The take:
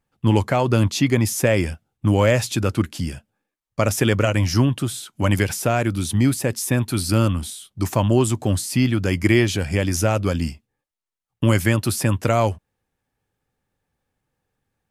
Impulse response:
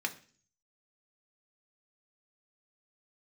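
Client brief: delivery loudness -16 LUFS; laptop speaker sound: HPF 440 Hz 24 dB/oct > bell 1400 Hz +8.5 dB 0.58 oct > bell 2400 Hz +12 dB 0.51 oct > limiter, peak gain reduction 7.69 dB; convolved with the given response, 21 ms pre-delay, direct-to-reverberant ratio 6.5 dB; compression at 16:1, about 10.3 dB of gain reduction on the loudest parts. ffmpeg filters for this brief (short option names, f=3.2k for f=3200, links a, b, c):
-filter_complex "[0:a]acompressor=threshold=-22dB:ratio=16,asplit=2[a][b];[1:a]atrim=start_sample=2205,adelay=21[c];[b][c]afir=irnorm=-1:irlink=0,volume=-11dB[d];[a][d]amix=inputs=2:normalize=0,highpass=f=440:w=0.5412,highpass=f=440:w=1.3066,equalizer=f=1.4k:t=o:w=0.58:g=8.5,equalizer=f=2.4k:t=o:w=0.51:g=12,volume=13dB,alimiter=limit=-3.5dB:level=0:latency=1"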